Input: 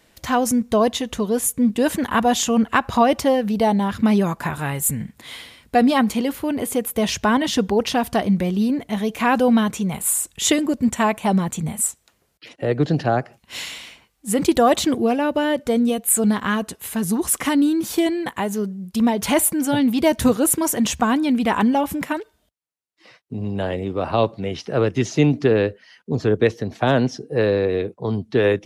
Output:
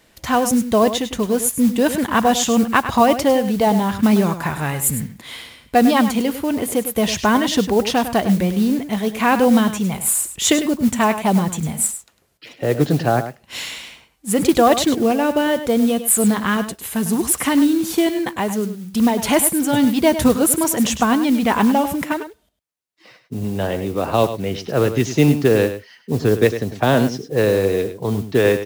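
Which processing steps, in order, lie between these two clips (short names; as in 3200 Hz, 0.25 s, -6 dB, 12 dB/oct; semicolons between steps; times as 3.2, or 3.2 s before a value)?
modulation noise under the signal 22 dB; echo 0.102 s -11 dB; gain +2 dB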